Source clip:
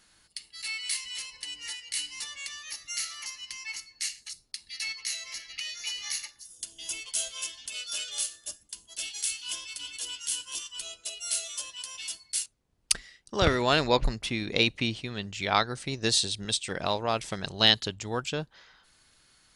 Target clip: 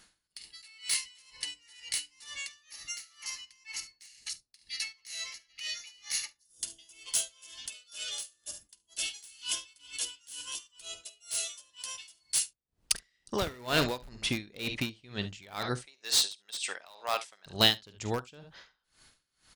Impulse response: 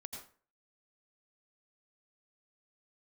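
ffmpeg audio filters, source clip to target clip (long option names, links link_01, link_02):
-filter_complex "[0:a]asettb=1/sr,asplit=3[link_01][link_02][link_03];[link_01]atrim=end=15.864[link_04];[link_02]atrim=start=15.86:end=17.46,asetpts=PTS-STARTPTS,afade=type=in:duration=0.004:curve=qsin,afade=type=out:start_time=1.596:duration=0.004:curve=qsin,highpass=790[link_05];[link_03]atrim=start=17.456[link_06];[link_04][link_05]acrossfade=duration=0.004:curve1=hsin:curve2=qsin[link_07];[link_07][link_06]acrossfade=duration=0.004:curve1=qsin:curve2=hsin,aecho=1:1:48|72:0.178|0.158,asplit=2[link_08][link_09];[link_09]aeval=exprs='(mod(11.2*val(0)+1,2)-1)/11.2':channel_layout=same,volume=-8dB[link_10];[link_08][link_10]amix=inputs=2:normalize=0,aeval=exprs='val(0)*pow(10,-25*(0.5-0.5*cos(2*PI*2.1*n/s))/20)':channel_layout=same"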